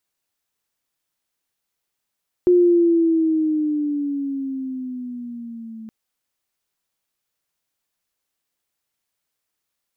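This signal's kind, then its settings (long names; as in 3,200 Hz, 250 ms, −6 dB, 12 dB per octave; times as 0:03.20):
pitch glide with a swell sine, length 3.42 s, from 359 Hz, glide −8.5 semitones, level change −23 dB, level −10 dB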